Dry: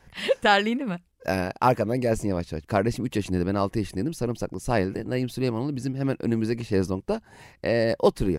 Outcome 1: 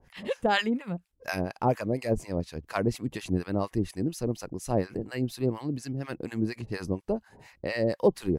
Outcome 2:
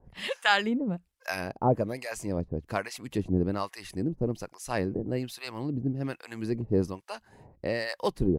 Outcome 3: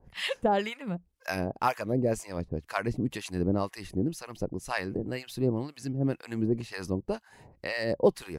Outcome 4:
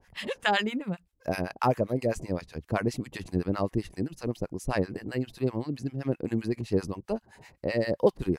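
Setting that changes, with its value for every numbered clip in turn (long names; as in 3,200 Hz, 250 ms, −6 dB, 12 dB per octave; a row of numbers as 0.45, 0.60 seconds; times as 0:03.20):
two-band tremolo in antiphase, speed: 4.2, 1.2, 2, 7.7 Hertz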